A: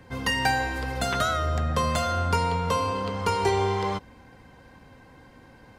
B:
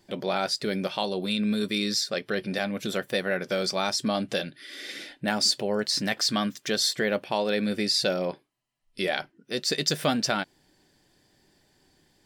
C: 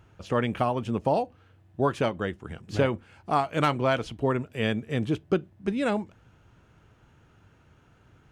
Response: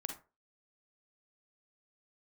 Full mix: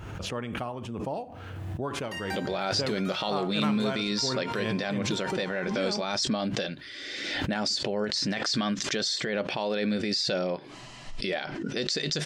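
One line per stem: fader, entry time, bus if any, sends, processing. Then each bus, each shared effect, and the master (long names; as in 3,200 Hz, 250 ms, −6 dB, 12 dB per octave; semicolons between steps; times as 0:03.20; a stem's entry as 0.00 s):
−19.0 dB, 1.85 s, no send, high-pass filter 720 Hz
+0.5 dB, 2.25 s, no send, low-pass filter 7,100 Hz 24 dB per octave; brickwall limiter −20.5 dBFS, peak gain reduction 10 dB
−12.0 dB, 0.00 s, send −7 dB, no processing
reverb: on, RT60 0.30 s, pre-delay 37 ms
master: background raised ahead of every attack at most 28 dB per second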